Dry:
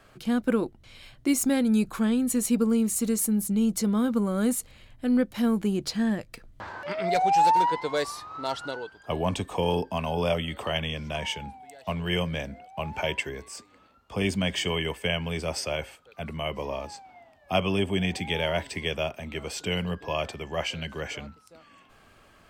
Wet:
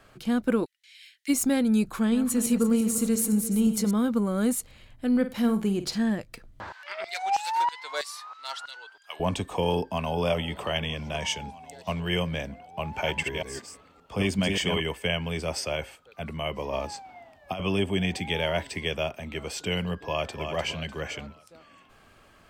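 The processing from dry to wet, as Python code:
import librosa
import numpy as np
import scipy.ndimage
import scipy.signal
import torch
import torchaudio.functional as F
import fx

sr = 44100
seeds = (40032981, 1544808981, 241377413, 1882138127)

y = fx.ellip_highpass(x, sr, hz=1800.0, order=4, stop_db=60, at=(0.64, 1.28), fade=0.02)
y = fx.reverse_delay_fb(y, sr, ms=172, feedback_pct=61, wet_db=-10.0, at=(1.95, 3.91))
y = fx.room_flutter(y, sr, wall_m=8.6, rt60_s=0.27, at=(5.11, 5.98))
y = fx.filter_lfo_highpass(y, sr, shape='saw_down', hz=3.1, low_hz=700.0, high_hz=3200.0, q=0.87, at=(6.72, 9.2))
y = fx.echo_throw(y, sr, start_s=9.8, length_s=0.42, ms=320, feedback_pct=80, wet_db=-16.0)
y = fx.peak_eq(y, sr, hz=6000.0, db=8.0, octaves=1.0, at=(11.2, 12.0))
y = fx.reverse_delay(y, sr, ms=192, wet_db=-3.5, at=(12.85, 14.8))
y = fx.over_compress(y, sr, threshold_db=-30.0, ratio=-1.0, at=(16.73, 17.6))
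y = fx.echo_throw(y, sr, start_s=20.01, length_s=0.41, ms=300, feedback_pct=40, wet_db=-6.5)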